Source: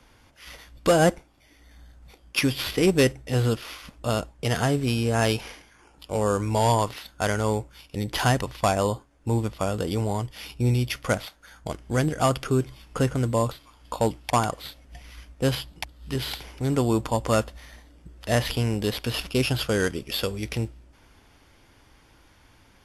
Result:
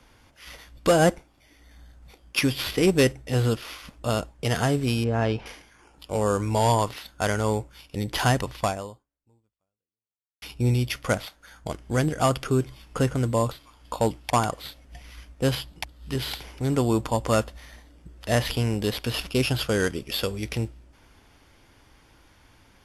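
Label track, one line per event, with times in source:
5.040000	5.460000	tape spacing loss at 10 kHz 28 dB
8.610000	10.420000	fade out exponential

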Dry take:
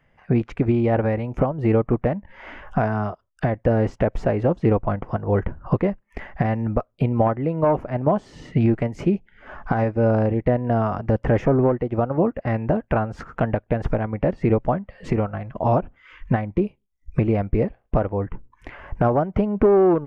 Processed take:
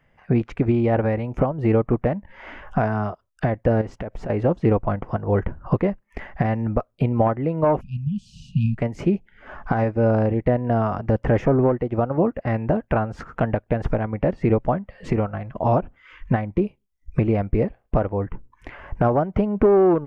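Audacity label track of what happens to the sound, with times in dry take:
3.810000	4.300000	compressor, threshold -27 dBFS
7.810000	8.780000	brick-wall FIR band-stop 230–2400 Hz

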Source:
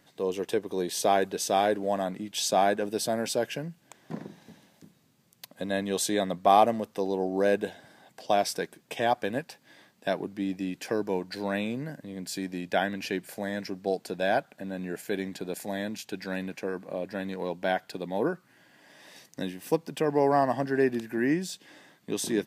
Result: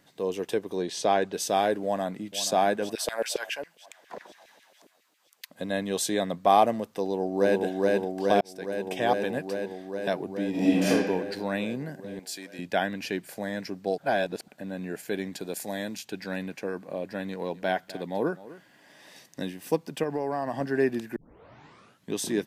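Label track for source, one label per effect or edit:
0.770000	1.330000	LPF 6400 Hz
1.840000	2.410000	echo throw 0.48 s, feedback 55%, level -13 dB
2.950000	5.500000	LFO high-pass saw down 7.3 Hz 400–2700 Hz
6.990000	7.620000	echo throw 0.42 s, feedback 80%, level -1 dB
8.410000	8.920000	fade in
10.500000	10.900000	reverb throw, RT60 1.3 s, DRR -11 dB
12.190000	12.590000	HPF 970 Hz 6 dB/oct
13.980000	14.480000	reverse
15.340000	15.990000	tone controls bass -2 dB, treble +5 dB
17.290000	19.510000	echo 0.252 s -17.5 dB
20.030000	20.610000	compressor, threshold -25 dBFS
21.160000	21.160000	tape start 0.97 s

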